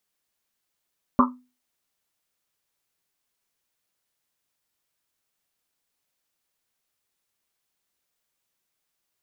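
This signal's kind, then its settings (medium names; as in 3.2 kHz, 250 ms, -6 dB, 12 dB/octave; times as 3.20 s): Risset drum, pitch 250 Hz, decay 0.32 s, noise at 1.1 kHz, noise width 350 Hz, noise 55%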